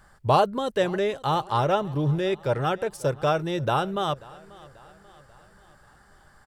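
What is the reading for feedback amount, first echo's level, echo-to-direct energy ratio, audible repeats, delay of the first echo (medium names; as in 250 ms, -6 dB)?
52%, -22.0 dB, -20.5 dB, 3, 538 ms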